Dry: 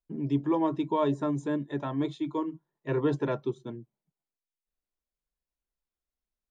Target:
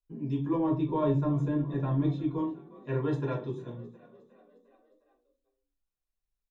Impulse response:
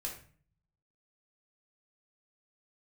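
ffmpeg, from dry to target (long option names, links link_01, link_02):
-filter_complex "[0:a]asettb=1/sr,asplit=3[link_01][link_02][link_03];[link_01]atrim=end=0.544[link_04];[link_02]atrim=start=0.54:end=2.38,asetpts=PTS-STARTPTS,afade=type=in:duration=0.004:curve=qsin,afade=type=out:start_time=1.836:duration=0.004:curve=qsin,aemphasis=mode=reproduction:type=bsi[link_05];[link_03]atrim=start=2.376[link_06];[link_04][link_05]acrossfade=duration=0.004:curve1=hsin:curve2=qsin[link_07];[link_07][link_06]acrossfade=duration=0.004:curve1=qsin:curve2=hsin,asplit=6[link_08][link_09][link_10][link_11][link_12][link_13];[link_09]adelay=357,afreqshift=33,volume=-20dB[link_14];[link_10]adelay=714,afreqshift=66,volume=-24.6dB[link_15];[link_11]adelay=1071,afreqshift=99,volume=-29.2dB[link_16];[link_12]adelay=1428,afreqshift=132,volume=-33.7dB[link_17];[link_13]adelay=1785,afreqshift=165,volume=-38.3dB[link_18];[link_08][link_14][link_15][link_16][link_17][link_18]amix=inputs=6:normalize=0[link_19];[1:a]atrim=start_sample=2205,asetrate=66150,aresample=44100[link_20];[link_19][link_20]afir=irnorm=-1:irlink=0"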